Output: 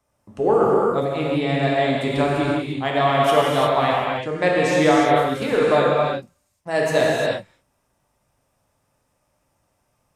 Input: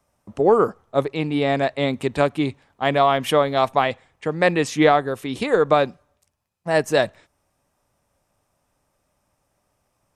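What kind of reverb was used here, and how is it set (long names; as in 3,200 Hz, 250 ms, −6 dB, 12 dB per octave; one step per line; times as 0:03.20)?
reverb whose tail is shaped and stops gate 380 ms flat, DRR −5 dB
level −4.5 dB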